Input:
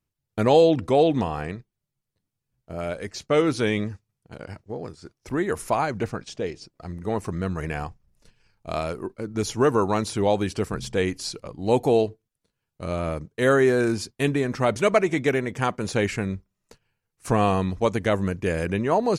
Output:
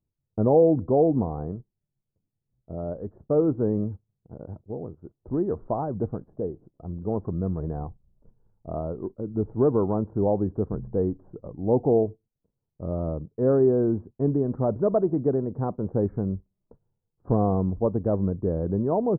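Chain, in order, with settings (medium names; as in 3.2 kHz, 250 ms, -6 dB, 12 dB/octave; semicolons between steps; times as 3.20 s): Gaussian low-pass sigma 11 samples; trim +1 dB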